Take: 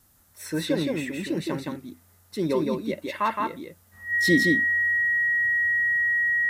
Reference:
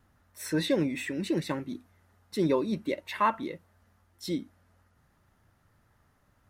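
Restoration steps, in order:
notch filter 1,900 Hz, Q 30
downward expander −51 dBFS, range −21 dB
echo removal 167 ms −3 dB
level correction −10.5 dB, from 0:03.93

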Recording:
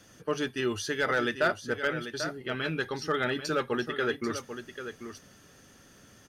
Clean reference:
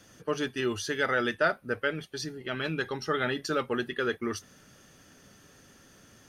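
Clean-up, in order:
clipped peaks rebuilt −18.5 dBFS
echo removal 791 ms −10 dB

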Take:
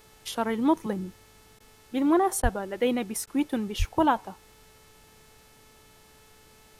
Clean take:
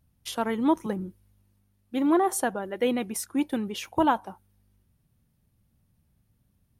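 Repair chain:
hum removal 435.1 Hz, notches 34
high-pass at the plosives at 0:02.42/0:03.78
repair the gap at 0:01.59/0:02.42/0:03.26, 11 ms
downward expander −48 dBFS, range −21 dB

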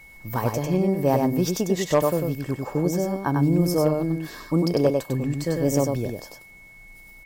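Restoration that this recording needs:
clipped peaks rebuilt −10.5 dBFS
notch filter 2,200 Hz, Q 30
echo removal 98 ms −4 dB

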